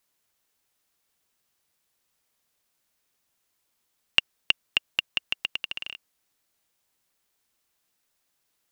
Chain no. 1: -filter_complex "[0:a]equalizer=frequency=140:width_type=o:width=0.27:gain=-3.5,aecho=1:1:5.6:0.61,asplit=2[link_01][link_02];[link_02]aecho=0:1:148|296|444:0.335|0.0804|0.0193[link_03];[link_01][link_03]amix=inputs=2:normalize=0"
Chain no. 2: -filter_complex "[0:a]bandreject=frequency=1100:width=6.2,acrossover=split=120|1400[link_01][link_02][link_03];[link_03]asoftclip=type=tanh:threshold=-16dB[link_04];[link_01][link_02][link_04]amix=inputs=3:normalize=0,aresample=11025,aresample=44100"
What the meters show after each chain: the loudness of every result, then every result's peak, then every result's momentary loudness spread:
−26.5, −32.5 LKFS; −1.5, −9.5 dBFS; 10, 6 LU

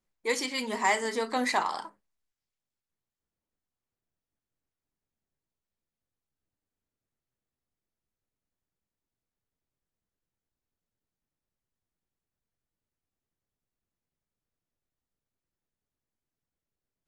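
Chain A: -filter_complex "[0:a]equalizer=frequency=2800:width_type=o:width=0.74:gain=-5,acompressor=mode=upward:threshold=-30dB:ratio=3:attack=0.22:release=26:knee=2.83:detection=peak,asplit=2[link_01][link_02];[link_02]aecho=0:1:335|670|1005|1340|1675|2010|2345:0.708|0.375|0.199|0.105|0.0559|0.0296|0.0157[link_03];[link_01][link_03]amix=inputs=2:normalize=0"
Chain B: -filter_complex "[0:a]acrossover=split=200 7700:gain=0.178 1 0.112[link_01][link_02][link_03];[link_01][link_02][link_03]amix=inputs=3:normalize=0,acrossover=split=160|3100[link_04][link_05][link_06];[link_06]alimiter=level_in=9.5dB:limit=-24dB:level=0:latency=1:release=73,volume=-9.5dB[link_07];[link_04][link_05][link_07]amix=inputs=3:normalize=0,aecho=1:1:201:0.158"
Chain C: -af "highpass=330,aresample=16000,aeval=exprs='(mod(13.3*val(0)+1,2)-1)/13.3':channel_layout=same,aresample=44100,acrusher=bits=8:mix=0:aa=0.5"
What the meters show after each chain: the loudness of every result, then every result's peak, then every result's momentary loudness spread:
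−29.5, −30.0, −31.0 LKFS; −11.5, −12.5, −18.5 dBFS; 20, 8, 6 LU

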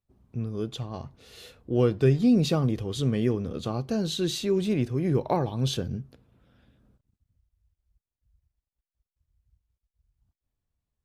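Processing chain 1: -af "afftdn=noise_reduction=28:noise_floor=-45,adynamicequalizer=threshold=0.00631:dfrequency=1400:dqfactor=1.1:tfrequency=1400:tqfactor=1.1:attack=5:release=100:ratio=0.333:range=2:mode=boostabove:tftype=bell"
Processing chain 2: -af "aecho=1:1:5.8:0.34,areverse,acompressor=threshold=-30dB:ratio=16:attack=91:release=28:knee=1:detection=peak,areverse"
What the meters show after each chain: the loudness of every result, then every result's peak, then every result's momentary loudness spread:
−26.5, −28.5 LKFS; −10.0, −12.0 dBFS; 14, 14 LU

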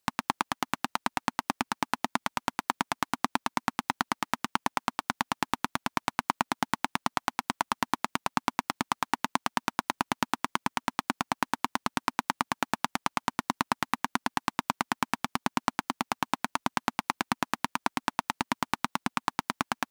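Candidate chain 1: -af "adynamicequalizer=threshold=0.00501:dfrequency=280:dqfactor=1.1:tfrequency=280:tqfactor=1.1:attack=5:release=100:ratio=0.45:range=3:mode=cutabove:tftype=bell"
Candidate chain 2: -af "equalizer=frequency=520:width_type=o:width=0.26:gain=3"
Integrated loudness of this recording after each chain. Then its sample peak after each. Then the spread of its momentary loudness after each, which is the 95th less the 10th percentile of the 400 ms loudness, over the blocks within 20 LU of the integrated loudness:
−32.5, −31.5 LKFS; −4.5, −4.5 dBFS; 2, 2 LU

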